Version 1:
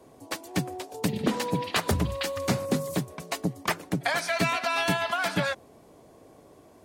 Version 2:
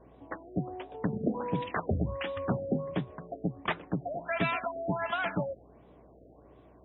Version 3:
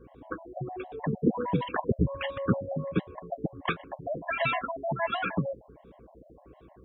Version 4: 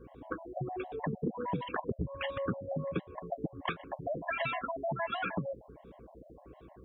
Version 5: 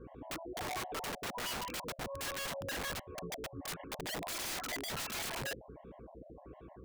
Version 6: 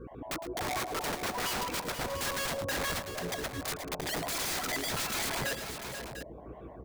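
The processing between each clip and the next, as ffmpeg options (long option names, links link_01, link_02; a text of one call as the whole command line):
ffmpeg -i in.wav -af "aeval=exprs='val(0)+0.00141*(sin(2*PI*60*n/s)+sin(2*PI*2*60*n/s)/2+sin(2*PI*3*60*n/s)/3+sin(2*PI*4*60*n/s)/4+sin(2*PI*5*60*n/s)/5)':channel_layout=same,afftfilt=real='re*lt(b*sr/1024,700*pow(4000/700,0.5+0.5*sin(2*PI*1.4*pts/sr)))':imag='im*lt(b*sr/1024,700*pow(4000/700,0.5+0.5*sin(2*PI*1.4*pts/sr)))':win_size=1024:overlap=0.75,volume=-3.5dB" out.wav
ffmpeg -i in.wav -af "afftfilt=real='re*gt(sin(2*PI*6.5*pts/sr)*(1-2*mod(floor(b*sr/1024/550),2)),0)':imag='im*gt(sin(2*PI*6.5*pts/sr)*(1-2*mod(floor(b*sr/1024/550),2)),0)':win_size=1024:overlap=0.75,volume=6dB" out.wav
ffmpeg -i in.wav -af "acompressor=threshold=-31dB:ratio=6" out.wav
ffmpeg -i in.wav -af "lowpass=2600,aeval=exprs='(mod(59.6*val(0)+1,2)-1)/59.6':channel_layout=same,volume=1dB" out.wav
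ffmpeg -i in.wav -filter_complex "[0:a]equalizer=frequency=2900:width_type=o:width=0.26:gain=-3,asplit=2[link_01][link_02];[link_02]aecho=0:1:110|485|696:0.237|0.335|0.299[link_03];[link_01][link_03]amix=inputs=2:normalize=0,volume=5.5dB" out.wav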